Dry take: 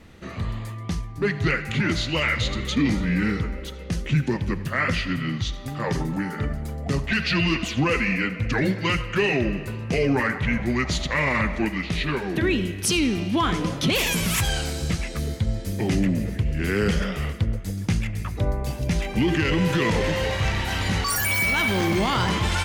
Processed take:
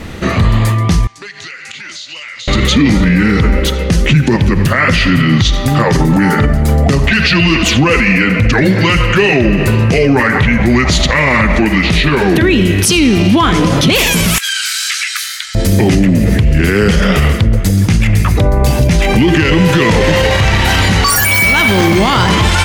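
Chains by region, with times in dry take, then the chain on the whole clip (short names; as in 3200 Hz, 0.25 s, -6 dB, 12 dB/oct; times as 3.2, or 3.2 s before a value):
1.07–2.48 LPF 7400 Hz 24 dB/oct + differentiator + compressor 8:1, threshold -47 dBFS
14.38–15.55 elliptic high-pass 1400 Hz, stop band 60 dB + compressor 10:1, threshold -34 dBFS
whole clip: compressor, threshold -23 dBFS; maximiser +23 dB; gain -1 dB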